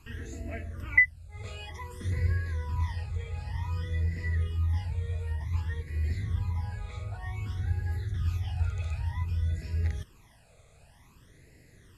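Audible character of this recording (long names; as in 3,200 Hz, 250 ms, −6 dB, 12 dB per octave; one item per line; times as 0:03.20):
a quantiser's noise floor 10 bits, dither none
phaser sweep stages 12, 0.54 Hz, lowest notch 300–1,100 Hz
Ogg Vorbis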